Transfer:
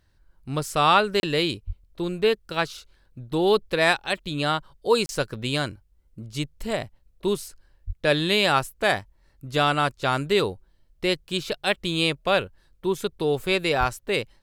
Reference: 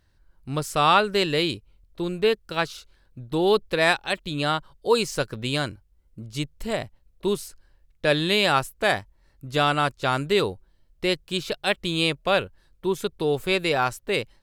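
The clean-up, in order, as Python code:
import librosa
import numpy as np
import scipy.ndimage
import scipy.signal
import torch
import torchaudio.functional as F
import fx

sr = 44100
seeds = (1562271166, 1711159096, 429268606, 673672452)

y = fx.fix_deplosive(x, sr, at_s=(1.66, 7.86, 13.79))
y = fx.fix_interpolate(y, sr, at_s=(1.2, 5.06), length_ms=31.0)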